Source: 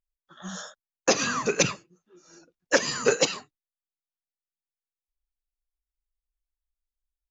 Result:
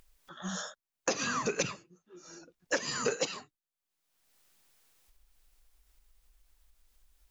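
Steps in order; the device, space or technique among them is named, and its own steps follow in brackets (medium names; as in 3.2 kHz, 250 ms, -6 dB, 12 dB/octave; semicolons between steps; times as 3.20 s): upward and downward compression (upward compressor, threshold -45 dBFS; compression 4:1, threshold -29 dBFS, peak gain reduction 12 dB)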